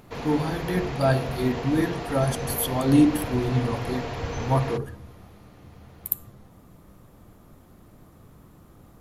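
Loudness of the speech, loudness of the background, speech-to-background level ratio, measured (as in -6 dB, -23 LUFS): -25.5 LUFS, -33.0 LUFS, 7.5 dB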